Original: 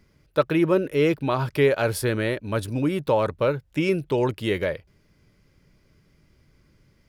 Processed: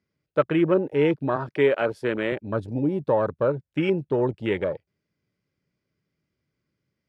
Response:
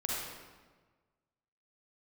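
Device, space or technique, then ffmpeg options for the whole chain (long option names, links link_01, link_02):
over-cleaned archive recording: -filter_complex "[0:a]asettb=1/sr,asplit=3[link_01][link_02][link_03];[link_01]atrim=end=1.364[link_04];[link_02]atrim=start=1.36:end=2.32,asetpts=PTS-STARTPTS,afade=type=in:duration=0.004:curve=qsin,afade=type=out:start_time=0.956:duration=0.004:curve=qsin,highpass=190[link_05];[link_03]atrim=start=2.316[link_06];[link_04][link_05]acrossfade=duration=0.004:curve1=hsin:curve2=qsin[link_07];[link_07][link_06]acrossfade=duration=0.004:curve1=qsin:curve2=hsin,highpass=110,lowpass=6500,equalizer=frequency=920:width=3.7:gain=-2.5,afwtdn=0.0316"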